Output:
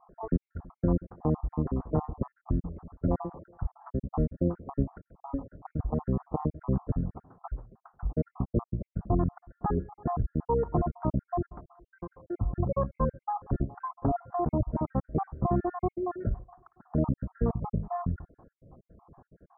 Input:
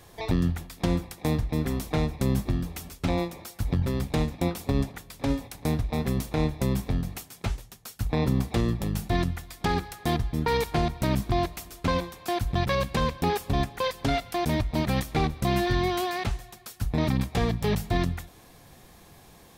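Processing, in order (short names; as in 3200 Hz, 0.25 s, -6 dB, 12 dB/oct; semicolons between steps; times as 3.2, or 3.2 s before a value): random spectral dropouts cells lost 53%; steep low-pass 1300 Hz 48 dB/oct; 16.19–16.82 flutter echo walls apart 9.5 m, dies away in 0.22 s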